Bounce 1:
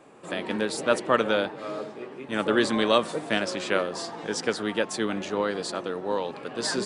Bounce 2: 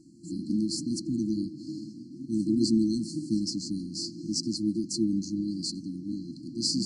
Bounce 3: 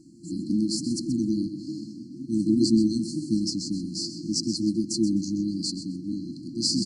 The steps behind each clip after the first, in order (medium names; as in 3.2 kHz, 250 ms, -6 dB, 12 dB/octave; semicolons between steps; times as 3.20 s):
low-pass 7.1 kHz 12 dB/octave; FFT band-reject 350–4100 Hz; trim +4 dB
feedback delay 128 ms, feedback 21%, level -12 dB; trim +3 dB